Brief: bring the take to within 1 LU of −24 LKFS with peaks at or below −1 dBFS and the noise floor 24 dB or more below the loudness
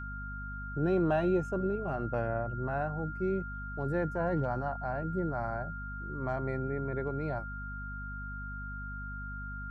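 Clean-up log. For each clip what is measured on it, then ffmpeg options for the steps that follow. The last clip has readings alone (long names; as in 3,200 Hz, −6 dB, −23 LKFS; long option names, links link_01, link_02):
mains hum 50 Hz; hum harmonics up to 250 Hz; level of the hum −39 dBFS; interfering tone 1,400 Hz; level of the tone −41 dBFS; integrated loudness −34.5 LKFS; sample peak −18.0 dBFS; target loudness −24.0 LKFS
→ -af "bandreject=frequency=50:width_type=h:width=6,bandreject=frequency=100:width_type=h:width=6,bandreject=frequency=150:width_type=h:width=6,bandreject=frequency=200:width_type=h:width=6,bandreject=frequency=250:width_type=h:width=6"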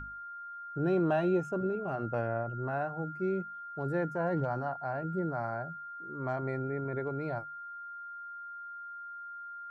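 mains hum none found; interfering tone 1,400 Hz; level of the tone −41 dBFS
→ -af "bandreject=frequency=1400:width=30"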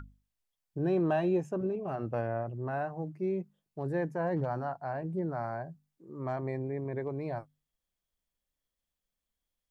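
interfering tone none found; integrated loudness −34.0 LKFS; sample peak −19.0 dBFS; target loudness −24.0 LKFS
→ -af "volume=10dB"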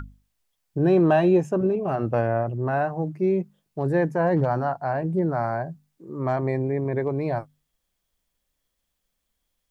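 integrated loudness −24.0 LKFS; sample peak −9.0 dBFS; background noise floor −78 dBFS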